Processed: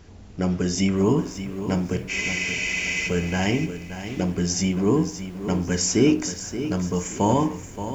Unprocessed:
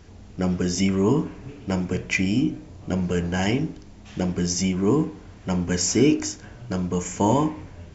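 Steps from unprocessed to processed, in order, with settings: spectral freeze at 2.12, 0.95 s; lo-fi delay 0.576 s, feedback 35%, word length 8-bit, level -10.5 dB

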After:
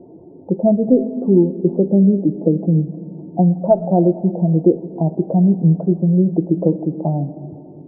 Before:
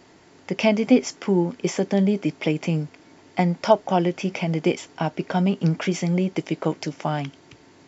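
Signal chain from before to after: spectral contrast raised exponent 1.6; steep low-pass 930 Hz 48 dB/oct; in parallel at +0.5 dB: compressor, threshold -35 dBFS, peak gain reduction 22 dB; on the sum: added harmonics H 2 -32 dB, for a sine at -4 dBFS; resonant low shelf 730 Hz +8.5 dB, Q 1.5; on a send at -10.5 dB: reverb RT60 2.3 s, pre-delay 6 ms; on the sum: gain -5 dB

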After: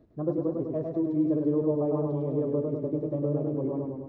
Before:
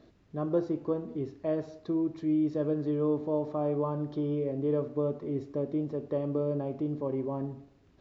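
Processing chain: tilt shelf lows +9.5 dB, about 1400 Hz; time stretch by phase-locked vocoder 0.51×; warbling echo 0.102 s, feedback 66%, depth 73 cents, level -4 dB; gain -7 dB

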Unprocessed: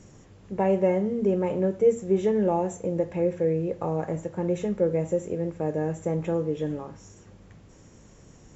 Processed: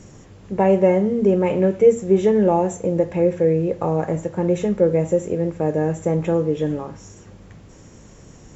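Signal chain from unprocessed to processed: 1.45–1.86 bell 2400 Hz +6.5 dB 0.77 oct; gain +7 dB

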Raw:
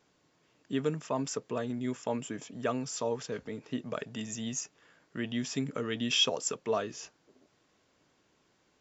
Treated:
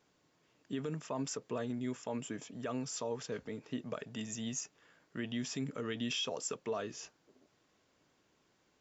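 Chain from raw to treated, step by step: limiter -25 dBFS, peak gain reduction 10.5 dB; gain -3 dB

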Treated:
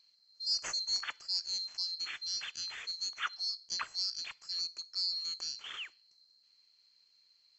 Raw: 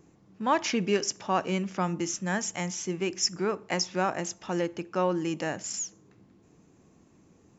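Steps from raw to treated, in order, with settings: band-swap scrambler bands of 4000 Hz; gain -8.5 dB

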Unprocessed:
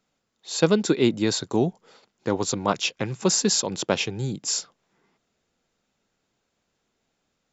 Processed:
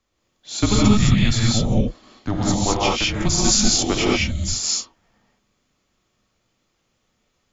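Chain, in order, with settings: non-linear reverb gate 0.24 s rising, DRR -5 dB; frequency shift -210 Hz

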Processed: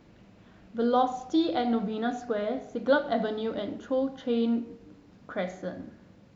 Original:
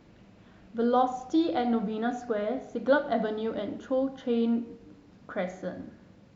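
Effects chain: dynamic EQ 3900 Hz, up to +5 dB, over -55 dBFS, Q 1.9

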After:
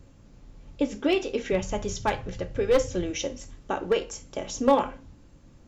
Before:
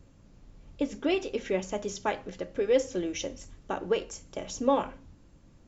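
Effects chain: one-sided fold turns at -18 dBFS; 1.52–3.11 resonant low shelf 170 Hz +11 dB, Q 1.5; non-linear reverb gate 90 ms falling, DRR 11.5 dB; gain +3.5 dB

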